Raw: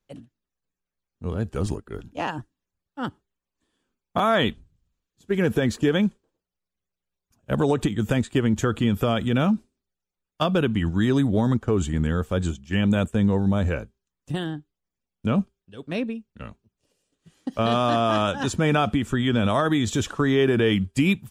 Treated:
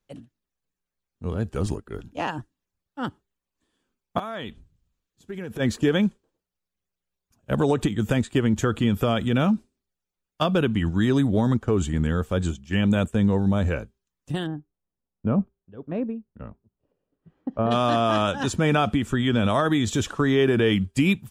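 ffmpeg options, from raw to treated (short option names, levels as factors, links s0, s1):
-filter_complex "[0:a]asplit=3[s0][s1][s2];[s0]afade=t=out:st=4.18:d=0.02[s3];[s1]acompressor=threshold=0.02:ratio=3:attack=3.2:release=140:knee=1:detection=peak,afade=t=in:st=4.18:d=0.02,afade=t=out:st=5.59:d=0.02[s4];[s2]afade=t=in:st=5.59:d=0.02[s5];[s3][s4][s5]amix=inputs=3:normalize=0,asplit=3[s6][s7][s8];[s6]afade=t=out:st=14.46:d=0.02[s9];[s7]lowpass=1100,afade=t=in:st=14.46:d=0.02,afade=t=out:st=17.7:d=0.02[s10];[s8]afade=t=in:st=17.7:d=0.02[s11];[s9][s10][s11]amix=inputs=3:normalize=0"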